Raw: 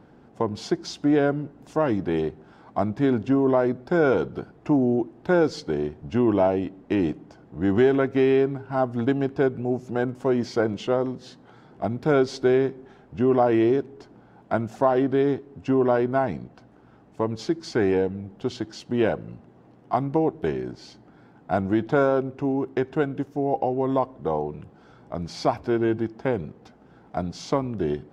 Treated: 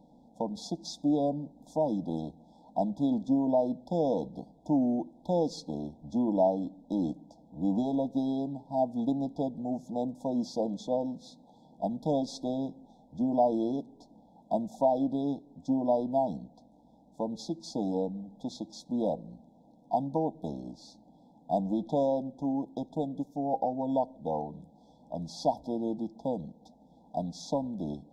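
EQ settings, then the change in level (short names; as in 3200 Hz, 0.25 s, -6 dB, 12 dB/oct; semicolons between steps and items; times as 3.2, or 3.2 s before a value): brick-wall FIR band-stop 1000–3300 Hz; fixed phaser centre 390 Hz, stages 6; notch 4500 Hz, Q 22; -3.5 dB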